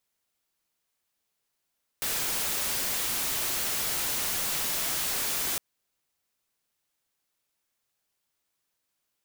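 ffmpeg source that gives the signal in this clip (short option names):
-f lavfi -i "anoisesrc=c=white:a=0.058:d=3.56:r=44100:seed=1"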